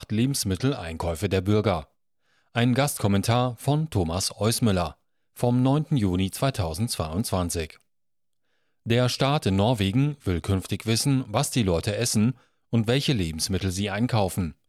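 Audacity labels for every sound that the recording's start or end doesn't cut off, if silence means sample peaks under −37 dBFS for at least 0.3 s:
2.550000	4.910000	sound
5.370000	7.700000	sound
8.860000	12.320000	sound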